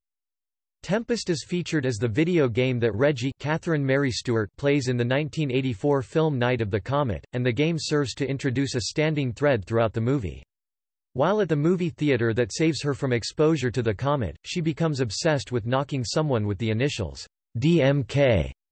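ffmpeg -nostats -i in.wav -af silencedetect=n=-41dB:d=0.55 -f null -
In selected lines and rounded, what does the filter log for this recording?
silence_start: 0.00
silence_end: 0.84 | silence_duration: 0.84
silence_start: 10.43
silence_end: 11.16 | silence_duration: 0.73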